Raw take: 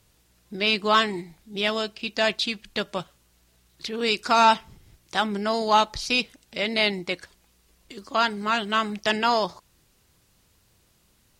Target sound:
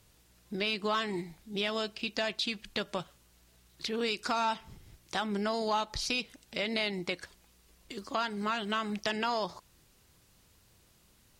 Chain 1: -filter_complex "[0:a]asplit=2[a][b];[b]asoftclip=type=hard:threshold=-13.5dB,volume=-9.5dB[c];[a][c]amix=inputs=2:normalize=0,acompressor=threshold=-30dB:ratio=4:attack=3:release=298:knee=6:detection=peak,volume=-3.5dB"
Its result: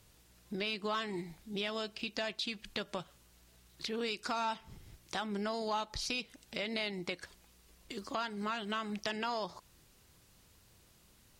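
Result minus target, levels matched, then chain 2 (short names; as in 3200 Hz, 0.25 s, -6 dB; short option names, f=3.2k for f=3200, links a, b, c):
compressor: peak gain reduction +5 dB
-filter_complex "[0:a]asplit=2[a][b];[b]asoftclip=type=hard:threshold=-13.5dB,volume=-9.5dB[c];[a][c]amix=inputs=2:normalize=0,acompressor=threshold=-23.5dB:ratio=4:attack=3:release=298:knee=6:detection=peak,volume=-3.5dB"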